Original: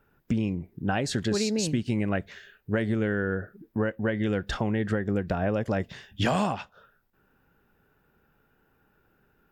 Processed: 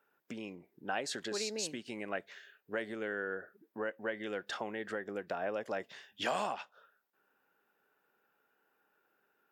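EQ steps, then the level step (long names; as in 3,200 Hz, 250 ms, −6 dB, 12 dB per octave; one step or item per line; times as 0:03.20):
high-pass filter 450 Hz 12 dB per octave
−6.0 dB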